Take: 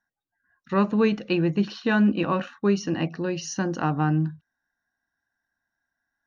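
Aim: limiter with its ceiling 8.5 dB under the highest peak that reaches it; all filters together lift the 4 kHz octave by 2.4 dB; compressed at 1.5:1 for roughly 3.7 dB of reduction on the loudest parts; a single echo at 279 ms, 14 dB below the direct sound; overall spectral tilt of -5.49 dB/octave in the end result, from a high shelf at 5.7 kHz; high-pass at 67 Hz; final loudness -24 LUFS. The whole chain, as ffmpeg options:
-af "highpass=67,equalizer=f=4000:t=o:g=6,highshelf=f=5700:g=-6.5,acompressor=threshold=0.0501:ratio=1.5,alimiter=limit=0.0841:level=0:latency=1,aecho=1:1:279:0.2,volume=2.24"

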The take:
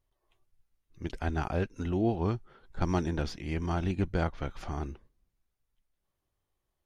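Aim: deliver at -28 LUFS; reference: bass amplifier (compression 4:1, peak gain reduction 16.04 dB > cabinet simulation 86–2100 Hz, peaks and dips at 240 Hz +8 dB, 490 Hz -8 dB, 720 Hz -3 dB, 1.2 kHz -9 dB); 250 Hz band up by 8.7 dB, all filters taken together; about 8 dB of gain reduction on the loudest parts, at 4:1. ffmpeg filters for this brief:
-af "equalizer=f=250:t=o:g=7,acompressor=threshold=0.0316:ratio=4,acompressor=threshold=0.00447:ratio=4,highpass=f=86:w=0.5412,highpass=f=86:w=1.3066,equalizer=f=240:t=q:w=4:g=8,equalizer=f=490:t=q:w=4:g=-8,equalizer=f=720:t=q:w=4:g=-3,equalizer=f=1200:t=q:w=4:g=-9,lowpass=f=2100:w=0.5412,lowpass=f=2100:w=1.3066,volume=10"

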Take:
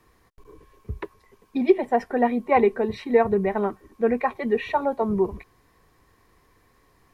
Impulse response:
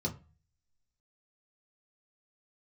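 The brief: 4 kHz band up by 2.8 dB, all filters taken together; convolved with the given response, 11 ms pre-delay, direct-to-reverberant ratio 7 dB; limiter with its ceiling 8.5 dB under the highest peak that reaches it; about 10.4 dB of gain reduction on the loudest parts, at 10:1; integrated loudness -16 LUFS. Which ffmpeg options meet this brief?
-filter_complex "[0:a]equalizer=f=4000:t=o:g=3.5,acompressor=threshold=0.0794:ratio=10,alimiter=limit=0.075:level=0:latency=1,asplit=2[s0][s1];[1:a]atrim=start_sample=2205,adelay=11[s2];[s1][s2]afir=irnorm=-1:irlink=0,volume=0.316[s3];[s0][s3]amix=inputs=2:normalize=0,volume=4.47"

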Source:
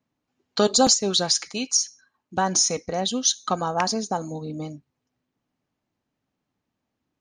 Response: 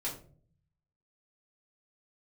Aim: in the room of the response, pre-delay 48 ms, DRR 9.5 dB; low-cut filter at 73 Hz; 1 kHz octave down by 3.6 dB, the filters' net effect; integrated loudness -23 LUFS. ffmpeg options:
-filter_complex "[0:a]highpass=73,equalizer=f=1000:t=o:g=-5,asplit=2[s0][s1];[1:a]atrim=start_sample=2205,adelay=48[s2];[s1][s2]afir=irnorm=-1:irlink=0,volume=0.251[s3];[s0][s3]amix=inputs=2:normalize=0,volume=0.944"

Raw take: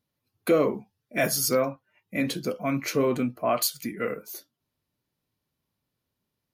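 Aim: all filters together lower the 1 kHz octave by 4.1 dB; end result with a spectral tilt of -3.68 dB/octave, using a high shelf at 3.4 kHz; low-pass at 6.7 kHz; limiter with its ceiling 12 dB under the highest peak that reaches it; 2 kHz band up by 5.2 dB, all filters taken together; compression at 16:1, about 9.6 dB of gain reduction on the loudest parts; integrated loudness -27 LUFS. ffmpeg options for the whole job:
-af "lowpass=6700,equalizer=f=1000:t=o:g=-8.5,equalizer=f=2000:t=o:g=6,highshelf=f=3400:g=6.5,acompressor=threshold=0.0447:ratio=16,volume=3.55,alimiter=limit=0.141:level=0:latency=1"

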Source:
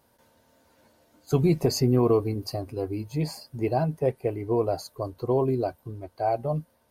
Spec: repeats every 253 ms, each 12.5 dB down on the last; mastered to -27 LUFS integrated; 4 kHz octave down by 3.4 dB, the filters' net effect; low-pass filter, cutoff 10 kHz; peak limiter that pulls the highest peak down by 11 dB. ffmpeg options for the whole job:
-af "lowpass=10000,equalizer=f=4000:t=o:g=-4,alimiter=limit=0.0891:level=0:latency=1,aecho=1:1:253|506|759:0.237|0.0569|0.0137,volume=1.68"

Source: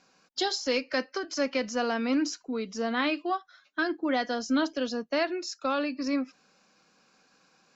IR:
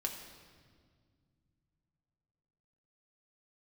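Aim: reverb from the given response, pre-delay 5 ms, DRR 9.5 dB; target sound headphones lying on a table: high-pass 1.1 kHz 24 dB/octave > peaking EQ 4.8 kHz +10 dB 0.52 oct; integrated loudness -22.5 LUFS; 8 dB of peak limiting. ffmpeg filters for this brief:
-filter_complex "[0:a]alimiter=limit=0.0631:level=0:latency=1,asplit=2[s0][s1];[1:a]atrim=start_sample=2205,adelay=5[s2];[s1][s2]afir=irnorm=-1:irlink=0,volume=0.299[s3];[s0][s3]amix=inputs=2:normalize=0,highpass=f=1100:w=0.5412,highpass=f=1100:w=1.3066,equalizer=f=4800:t=o:w=0.52:g=10,volume=3.55"

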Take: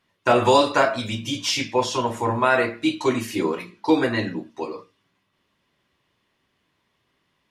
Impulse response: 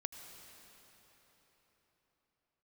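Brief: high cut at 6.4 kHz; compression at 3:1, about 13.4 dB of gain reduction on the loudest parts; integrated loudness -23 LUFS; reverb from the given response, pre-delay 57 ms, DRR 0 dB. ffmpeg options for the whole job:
-filter_complex "[0:a]lowpass=6400,acompressor=threshold=0.0282:ratio=3,asplit=2[s0][s1];[1:a]atrim=start_sample=2205,adelay=57[s2];[s1][s2]afir=irnorm=-1:irlink=0,volume=1.26[s3];[s0][s3]amix=inputs=2:normalize=0,volume=2.11"

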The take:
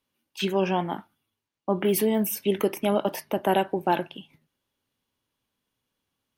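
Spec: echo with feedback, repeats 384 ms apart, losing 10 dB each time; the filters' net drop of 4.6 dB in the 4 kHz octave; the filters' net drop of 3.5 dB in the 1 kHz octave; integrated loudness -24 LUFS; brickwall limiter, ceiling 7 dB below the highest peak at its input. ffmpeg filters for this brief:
-af "equalizer=f=1000:t=o:g=-4.5,equalizer=f=4000:t=o:g=-6.5,alimiter=limit=0.112:level=0:latency=1,aecho=1:1:384|768|1152|1536:0.316|0.101|0.0324|0.0104,volume=2.11"

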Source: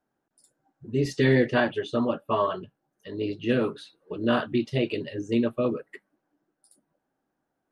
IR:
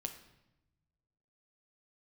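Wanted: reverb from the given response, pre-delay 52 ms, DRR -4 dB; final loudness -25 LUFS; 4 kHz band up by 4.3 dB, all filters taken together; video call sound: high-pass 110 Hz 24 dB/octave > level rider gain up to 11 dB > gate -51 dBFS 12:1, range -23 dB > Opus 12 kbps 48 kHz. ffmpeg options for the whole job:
-filter_complex "[0:a]equalizer=f=4000:t=o:g=6,asplit=2[s0][s1];[1:a]atrim=start_sample=2205,adelay=52[s2];[s1][s2]afir=irnorm=-1:irlink=0,volume=1.88[s3];[s0][s3]amix=inputs=2:normalize=0,highpass=f=110:w=0.5412,highpass=f=110:w=1.3066,dynaudnorm=m=3.55,agate=range=0.0708:threshold=0.00282:ratio=12,volume=0.631" -ar 48000 -c:a libopus -b:a 12k

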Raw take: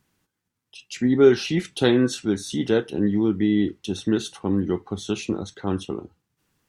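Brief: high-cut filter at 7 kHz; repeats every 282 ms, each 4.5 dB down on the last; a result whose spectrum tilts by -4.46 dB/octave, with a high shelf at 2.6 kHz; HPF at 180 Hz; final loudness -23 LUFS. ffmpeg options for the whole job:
-af "highpass=180,lowpass=7000,highshelf=f=2600:g=7.5,aecho=1:1:282|564|846|1128|1410|1692|1974|2256|2538:0.596|0.357|0.214|0.129|0.0772|0.0463|0.0278|0.0167|0.01,volume=0.841"

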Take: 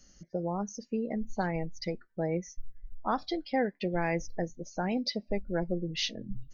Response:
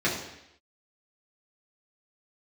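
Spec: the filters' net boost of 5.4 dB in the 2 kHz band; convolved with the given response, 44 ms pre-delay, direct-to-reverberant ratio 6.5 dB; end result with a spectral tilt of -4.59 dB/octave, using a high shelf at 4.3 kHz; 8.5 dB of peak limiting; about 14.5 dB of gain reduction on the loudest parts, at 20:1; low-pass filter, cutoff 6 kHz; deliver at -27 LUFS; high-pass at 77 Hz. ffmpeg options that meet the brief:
-filter_complex "[0:a]highpass=77,lowpass=6000,equalizer=f=2000:t=o:g=7.5,highshelf=f=4300:g=-5,acompressor=threshold=0.0141:ratio=20,alimiter=level_in=2.99:limit=0.0631:level=0:latency=1,volume=0.335,asplit=2[s0][s1];[1:a]atrim=start_sample=2205,adelay=44[s2];[s1][s2]afir=irnorm=-1:irlink=0,volume=0.106[s3];[s0][s3]amix=inputs=2:normalize=0,volume=7.08"

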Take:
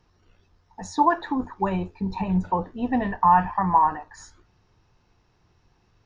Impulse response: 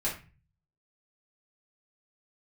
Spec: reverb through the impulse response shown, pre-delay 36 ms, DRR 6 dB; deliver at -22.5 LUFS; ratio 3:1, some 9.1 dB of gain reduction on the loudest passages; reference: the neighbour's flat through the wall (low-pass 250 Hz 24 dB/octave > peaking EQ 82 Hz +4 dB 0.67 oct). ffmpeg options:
-filter_complex "[0:a]acompressor=threshold=0.0562:ratio=3,asplit=2[s0][s1];[1:a]atrim=start_sample=2205,adelay=36[s2];[s1][s2]afir=irnorm=-1:irlink=0,volume=0.237[s3];[s0][s3]amix=inputs=2:normalize=0,lowpass=f=250:w=0.5412,lowpass=f=250:w=1.3066,equalizer=f=82:t=o:w=0.67:g=4,volume=3.76"

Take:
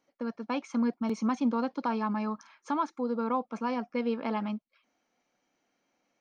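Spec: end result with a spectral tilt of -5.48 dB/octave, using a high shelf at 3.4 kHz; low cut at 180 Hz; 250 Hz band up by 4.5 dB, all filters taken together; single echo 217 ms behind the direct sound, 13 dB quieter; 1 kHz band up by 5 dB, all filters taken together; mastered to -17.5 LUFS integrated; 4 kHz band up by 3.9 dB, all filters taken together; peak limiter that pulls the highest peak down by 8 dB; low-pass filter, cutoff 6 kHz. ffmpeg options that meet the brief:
-af "highpass=180,lowpass=6000,equalizer=f=250:t=o:g=6,equalizer=f=1000:t=o:g=5,highshelf=f=3400:g=3,equalizer=f=4000:t=o:g=3.5,alimiter=limit=0.0841:level=0:latency=1,aecho=1:1:217:0.224,volume=4.73"

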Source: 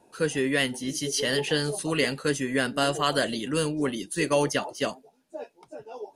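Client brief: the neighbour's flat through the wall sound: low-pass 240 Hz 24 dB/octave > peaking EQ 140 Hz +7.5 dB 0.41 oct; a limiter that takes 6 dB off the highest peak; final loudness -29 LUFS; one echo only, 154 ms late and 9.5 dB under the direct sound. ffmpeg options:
-af "alimiter=limit=0.158:level=0:latency=1,lowpass=f=240:w=0.5412,lowpass=f=240:w=1.3066,equalizer=f=140:t=o:w=0.41:g=7.5,aecho=1:1:154:0.335,volume=1.68"

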